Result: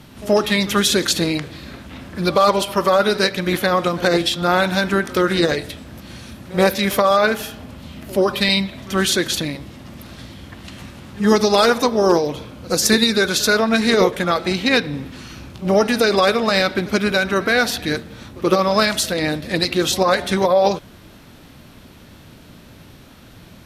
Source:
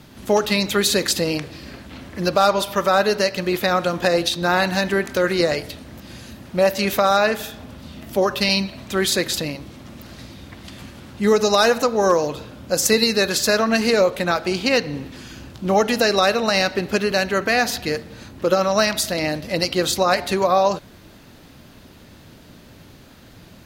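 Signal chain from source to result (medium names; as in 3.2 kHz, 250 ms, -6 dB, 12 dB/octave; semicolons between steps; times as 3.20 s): formant shift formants -2 st; pre-echo 78 ms -20.5 dB; trim +2 dB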